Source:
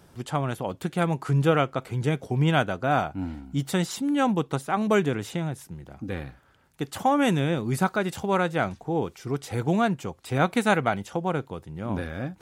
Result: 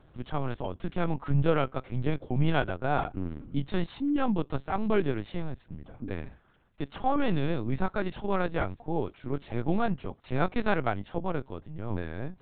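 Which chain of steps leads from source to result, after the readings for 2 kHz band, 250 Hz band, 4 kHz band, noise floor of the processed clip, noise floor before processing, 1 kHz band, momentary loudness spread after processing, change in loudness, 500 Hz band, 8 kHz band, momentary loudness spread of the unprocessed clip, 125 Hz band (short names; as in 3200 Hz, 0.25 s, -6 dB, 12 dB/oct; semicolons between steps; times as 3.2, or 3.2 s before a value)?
-6.5 dB, -4.5 dB, -8.0 dB, -61 dBFS, -57 dBFS, -6.0 dB, 11 LU, -5.0 dB, -4.5 dB, under -40 dB, 12 LU, -4.5 dB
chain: low shelf 430 Hz +4.5 dB; LPC vocoder at 8 kHz pitch kept; gain -5.5 dB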